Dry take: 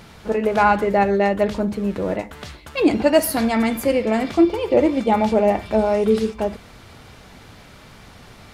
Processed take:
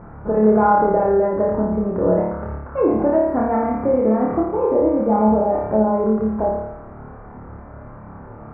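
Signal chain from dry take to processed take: inverse Chebyshev low-pass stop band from 3.3 kHz, stop band 50 dB; in parallel at +2 dB: peak limiter -14 dBFS, peak gain reduction 9.5 dB; on the sum: compression, threshold -13 dBFS, peak gain reduction 7.5 dB; flutter echo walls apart 4.8 m, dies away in 0.84 s; trim -3.5 dB

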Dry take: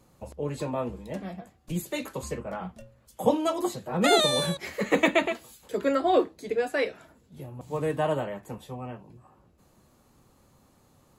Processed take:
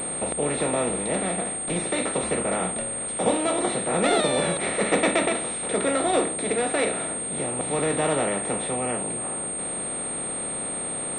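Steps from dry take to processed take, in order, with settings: spectral levelling over time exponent 0.4; class-D stage that switches slowly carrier 8.6 kHz; trim -4 dB

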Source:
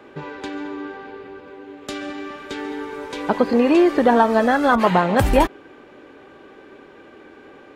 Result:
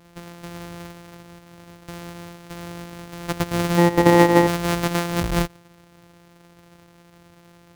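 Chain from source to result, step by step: sorted samples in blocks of 256 samples; 3.77–4.46 s: small resonant body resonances 310/480/860/1900 Hz, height 11 dB -> 14 dB, ringing for 25 ms; trim -6.5 dB

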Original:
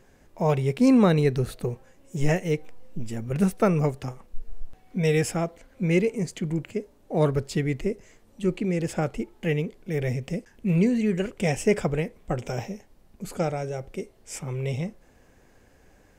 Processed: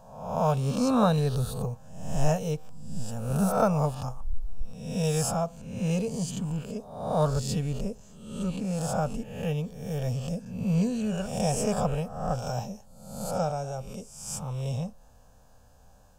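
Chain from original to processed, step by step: reverse spectral sustain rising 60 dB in 0.79 s; static phaser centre 850 Hz, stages 4

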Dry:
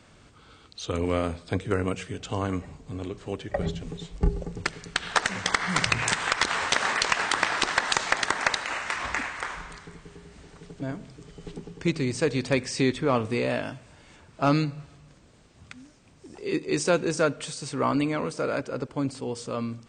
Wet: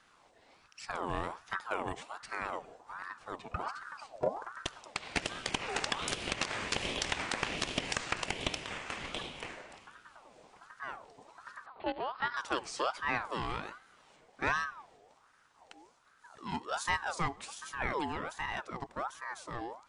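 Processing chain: 11.66–12.37 s: monotone LPC vocoder at 8 kHz 260 Hz; ring modulator with a swept carrier 1 kHz, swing 45%, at 1.3 Hz; trim -7 dB

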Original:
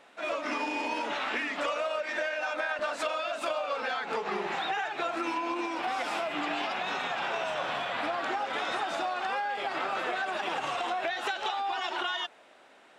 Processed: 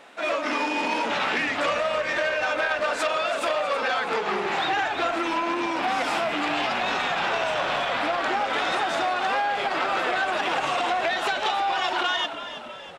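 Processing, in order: frequency-shifting echo 324 ms, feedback 56%, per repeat -61 Hz, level -12 dB; transformer saturation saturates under 1.7 kHz; trim +8 dB

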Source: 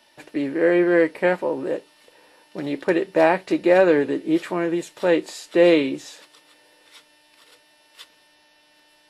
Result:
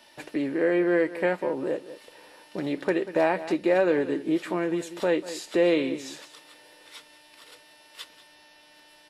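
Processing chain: delay 189 ms -17 dB; compression 1.5:1, threshold -37 dBFS, peak gain reduction 9.5 dB; trim +2.5 dB

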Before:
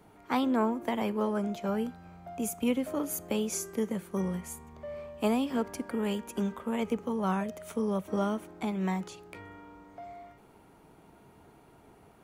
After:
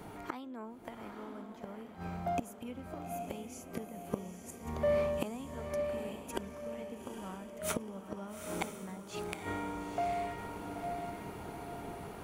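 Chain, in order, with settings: gain riding within 4 dB 2 s; inverted gate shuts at -30 dBFS, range -27 dB; echo that smears into a reverb 868 ms, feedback 40%, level -5.5 dB; trim +10 dB

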